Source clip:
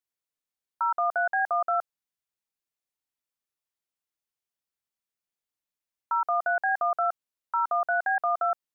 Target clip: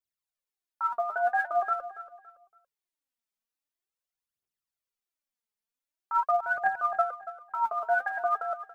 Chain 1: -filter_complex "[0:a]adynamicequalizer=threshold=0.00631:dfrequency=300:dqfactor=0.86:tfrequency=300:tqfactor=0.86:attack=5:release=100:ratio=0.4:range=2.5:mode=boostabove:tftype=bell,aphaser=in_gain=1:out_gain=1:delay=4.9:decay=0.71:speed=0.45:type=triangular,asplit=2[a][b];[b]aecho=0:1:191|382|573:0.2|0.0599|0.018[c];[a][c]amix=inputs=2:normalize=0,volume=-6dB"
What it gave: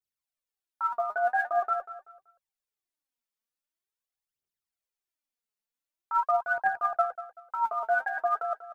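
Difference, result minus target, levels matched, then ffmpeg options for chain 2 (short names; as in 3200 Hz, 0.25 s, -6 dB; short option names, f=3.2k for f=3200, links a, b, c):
echo 91 ms early
-filter_complex "[0:a]adynamicequalizer=threshold=0.00631:dfrequency=300:dqfactor=0.86:tfrequency=300:tqfactor=0.86:attack=5:release=100:ratio=0.4:range=2.5:mode=boostabove:tftype=bell,aphaser=in_gain=1:out_gain=1:delay=4.9:decay=0.71:speed=0.45:type=triangular,asplit=2[a][b];[b]aecho=0:1:282|564|846:0.2|0.0599|0.018[c];[a][c]amix=inputs=2:normalize=0,volume=-6dB"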